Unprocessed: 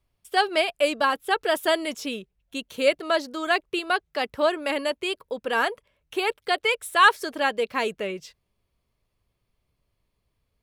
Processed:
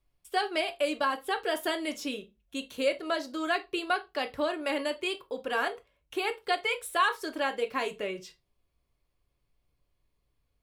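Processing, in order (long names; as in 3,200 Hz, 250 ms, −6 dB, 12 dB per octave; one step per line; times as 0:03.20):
downward compressor 2 to 1, threshold −23 dBFS, peak gain reduction 7 dB
on a send: convolution reverb RT60 0.20 s, pre-delay 3 ms, DRR 5.5 dB
on the sum: level −4.5 dB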